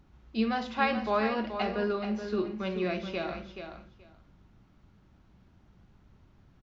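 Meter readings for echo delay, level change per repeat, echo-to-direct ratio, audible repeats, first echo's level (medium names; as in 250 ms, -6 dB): 428 ms, -16.5 dB, -8.5 dB, 2, -8.5 dB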